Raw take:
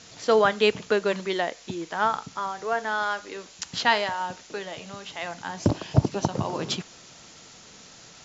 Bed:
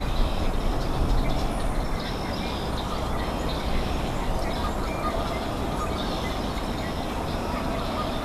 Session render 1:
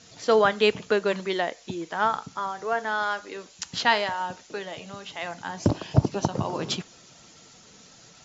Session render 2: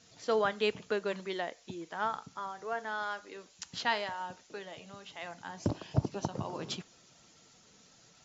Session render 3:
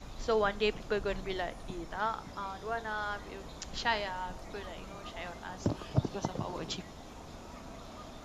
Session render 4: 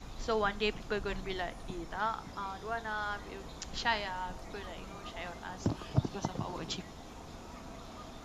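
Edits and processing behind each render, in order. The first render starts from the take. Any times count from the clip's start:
denoiser 6 dB, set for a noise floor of -49 dBFS
gain -9.5 dB
add bed -19.5 dB
notch 590 Hz, Q 14; dynamic EQ 470 Hz, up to -4 dB, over -44 dBFS, Q 2

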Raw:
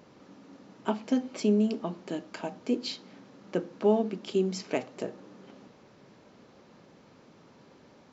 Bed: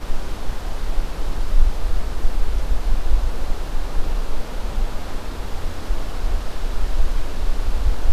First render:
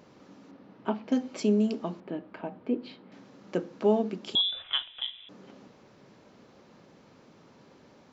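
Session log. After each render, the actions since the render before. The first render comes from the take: 0.51–1.12 air absorption 230 m; 2–3.12 air absorption 480 m; 4.35–5.29 inverted band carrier 3700 Hz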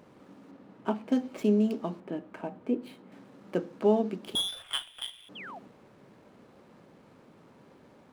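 median filter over 9 samples; 5.35–5.59 painted sound fall 620–3500 Hz -43 dBFS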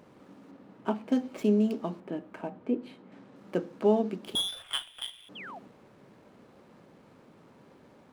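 2.5–3.36 air absorption 60 m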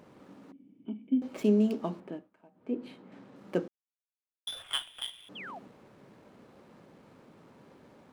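0.52–1.22 vocal tract filter i; 1.99–2.85 dip -22.5 dB, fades 0.31 s linear; 3.68–4.47 mute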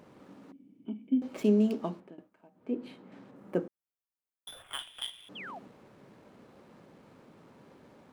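1.75–2.18 fade out equal-power, to -18.5 dB; 3.31–4.79 bell 4400 Hz -11 dB 1.8 oct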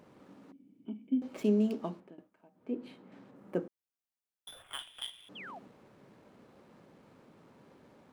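gain -3 dB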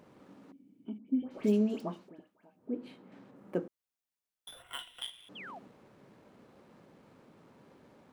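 0.98–2.75 dispersion highs, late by 95 ms, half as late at 1600 Hz; 4.58–5.02 ripple EQ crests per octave 2, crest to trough 10 dB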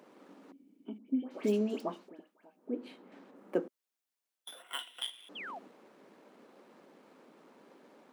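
HPF 230 Hz 24 dB/oct; harmonic-percussive split percussive +3 dB

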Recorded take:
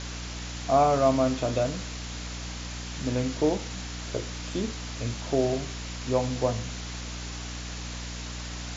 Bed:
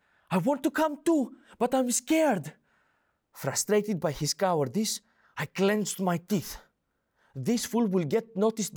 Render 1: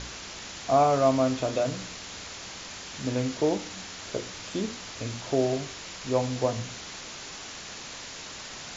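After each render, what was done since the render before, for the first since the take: de-hum 60 Hz, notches 5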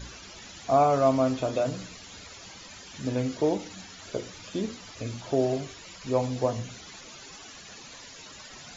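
denoiser 13 dB, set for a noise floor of -41 dBFS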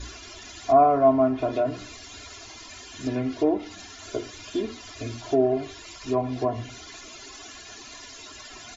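treble ducked by the level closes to 1500 Hz, closed at -21 dBFS; comb 2.9 ms, depth 94%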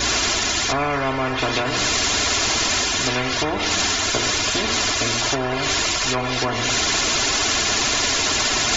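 reverse; upward compressor, threshold -32 dBFS; reverse; spectral compressor 4:1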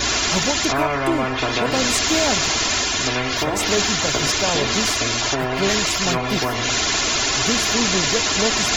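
add bed +2 dB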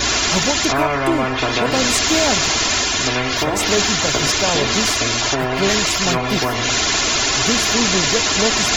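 gain +2.5 dB

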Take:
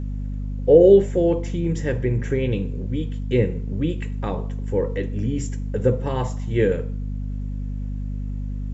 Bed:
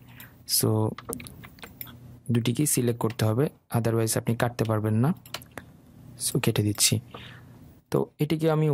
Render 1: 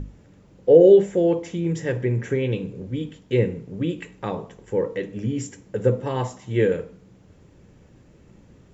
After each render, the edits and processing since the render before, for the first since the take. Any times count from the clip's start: notches 50/100/150/200/250/300 Hz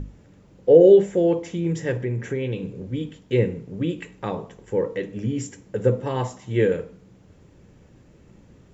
1.97–2.63 compressor 1.5:1, threshold -28 dBFS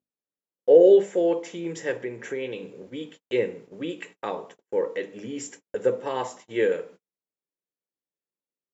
HPF 400 Hz 12 dB/oct; gate -45 dBFS, range -42 dB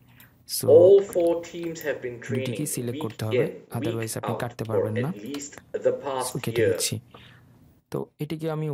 add bed -5.5 dB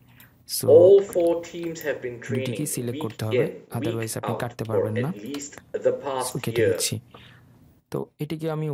gain +1 dB

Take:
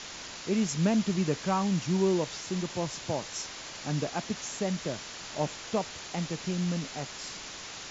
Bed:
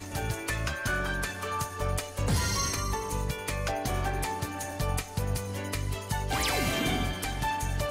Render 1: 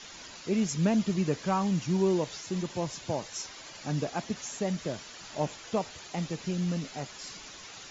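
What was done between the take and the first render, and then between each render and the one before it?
denoiser 9 dB, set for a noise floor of -43 dBFS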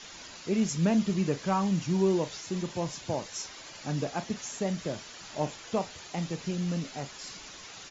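doubler 36 ms -13.5 dB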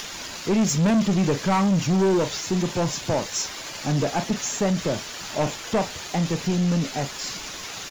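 sample leveller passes 3; upward compressor, threshold -32 dBFS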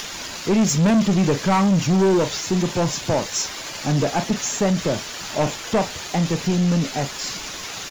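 gain +3 dB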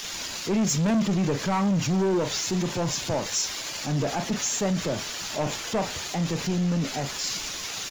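limiter -20 dBFS, peak gain reduction 8 dB; three-band expander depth 40%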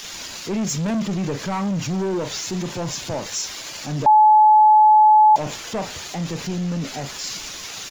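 4.06–5.36 bleep 857 Hz -8.5 dBFS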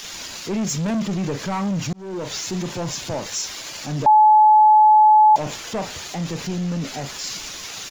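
1.93–2.34 fade in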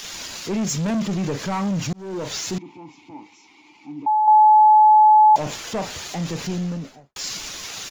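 2.58–4.28 vowel filter u; 6.5–7.16 studio fade out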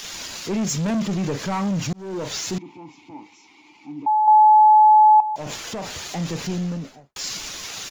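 5.2–6.02 compressor, threshold -25 dBFS

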